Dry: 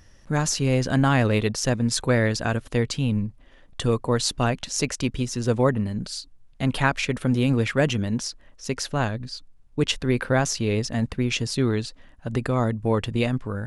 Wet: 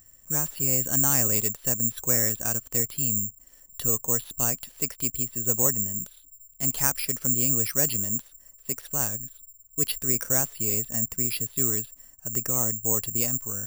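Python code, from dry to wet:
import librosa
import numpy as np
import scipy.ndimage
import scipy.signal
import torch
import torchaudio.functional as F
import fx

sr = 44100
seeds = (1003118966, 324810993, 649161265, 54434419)

y = (np.kron(scipy.signal.resample_poly(x, 1, 6), np.eye(6)[0]) * 6)[:len(x)]
y = y * 10.0 ** (-10.5 / 20.0)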